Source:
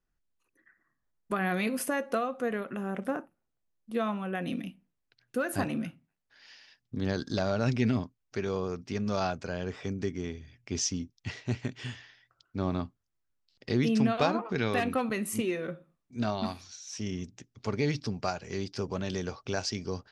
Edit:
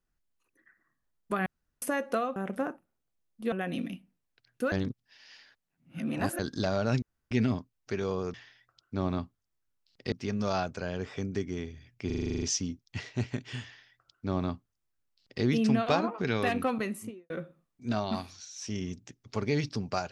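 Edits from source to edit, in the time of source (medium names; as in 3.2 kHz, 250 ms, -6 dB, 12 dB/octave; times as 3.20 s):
1.46–1.82 s: room tone
2.36–2.85 s: delete
4.01–4.26 s: delete
5.46–7.13 s: reverse
7.76 s: insert room tone 0.29 s
10.73 s: stutter 0.04 s, 10 plays
11.96–13.74 s: copy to 8.79 s
15.06–15.61 s: studio fade out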